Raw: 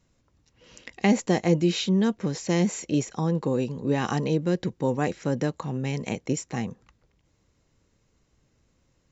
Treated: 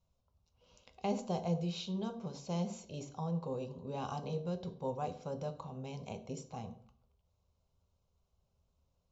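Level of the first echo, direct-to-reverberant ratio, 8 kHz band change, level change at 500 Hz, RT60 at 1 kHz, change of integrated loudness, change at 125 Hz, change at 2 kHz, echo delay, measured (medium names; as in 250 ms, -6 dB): no echo, 7.0 dB, no reading, -12.5 dB, 0.55 s, -13.5 dB, -12.5 dB, -21.5 dB, no echo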